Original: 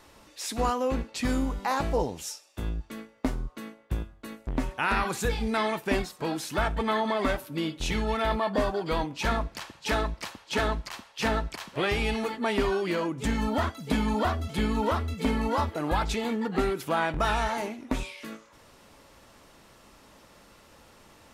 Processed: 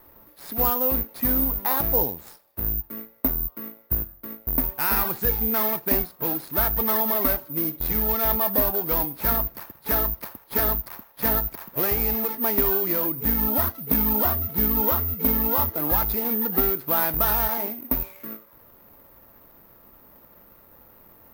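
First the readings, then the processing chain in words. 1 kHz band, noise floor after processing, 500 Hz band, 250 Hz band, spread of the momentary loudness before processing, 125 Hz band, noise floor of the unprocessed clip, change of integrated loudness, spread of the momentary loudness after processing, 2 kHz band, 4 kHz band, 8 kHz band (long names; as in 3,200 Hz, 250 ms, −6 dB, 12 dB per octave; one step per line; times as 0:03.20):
−0.5 dB, −53 dBFS, 0.0 dB, 0.0 dB, 10 LU, 0.0 dB, −56 dBFS, +7.5 dB, 8 LU, −3.0 dB, −4.0 dB, +2.0 dB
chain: running median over 15 samples
dynamic equaliser 5,100 Hz, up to +5 dB, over −53 dBFS, Q 1.2
bad sample-rate conversion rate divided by 3×, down filtered, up zero stuff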